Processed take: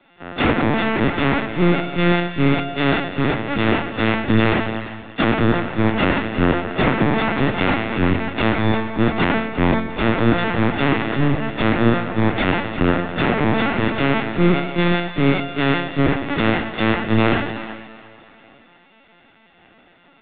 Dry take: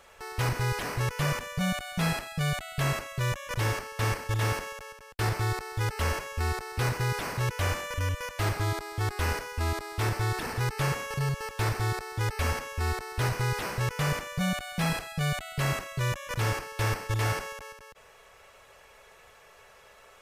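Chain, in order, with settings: partials quantised in pitch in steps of 4 st; saturation -22 dBFS, distortion -14 dB; on a send: tape echo 466 ms, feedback 61%, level -13 dB, low-pass 1.5 kHz; on the sum: LPC vocoder at 8 kHz pitch kept; in parallel at -0.5 dB: peak limiter -17.5 dBFS, peak gain reduction 9.5 dB; on the sum: peaking EQ 270 Hz +13.5 dB 2 oct; two-band feedback delay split 640 Hz, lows 154 ms, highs 353 ms, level -10 dB; three bands expanded up and down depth 70%; trim +2.5 dB

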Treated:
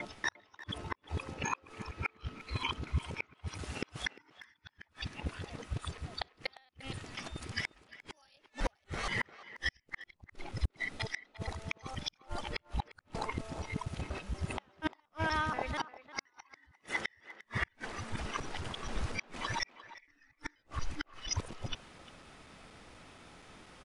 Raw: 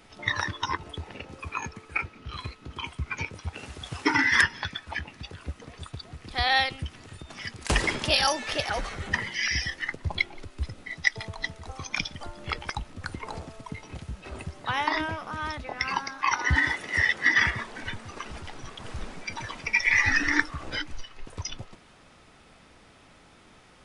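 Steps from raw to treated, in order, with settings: time reversed locally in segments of 239 ms; inverted gate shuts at -20 dBFS, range -42 dB; speakerphone echo 350 ms, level -15 dB

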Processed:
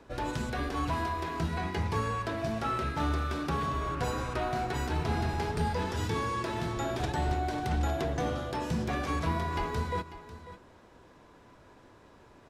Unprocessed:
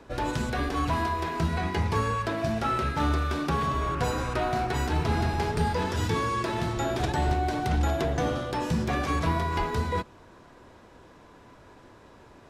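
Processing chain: delay 545 ms -14.5 dB; trim -4.5 dB

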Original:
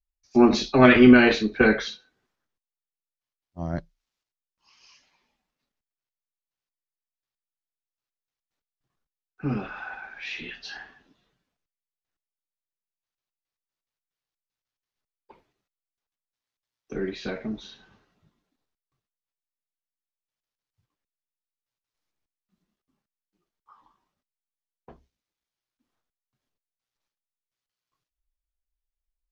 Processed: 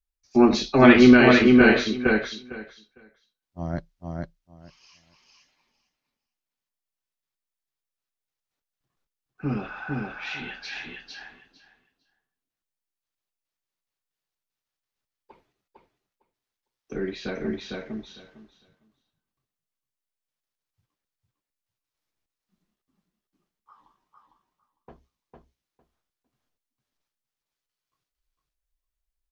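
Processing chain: feedback delay 454 ms, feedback 16%, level -3 dB

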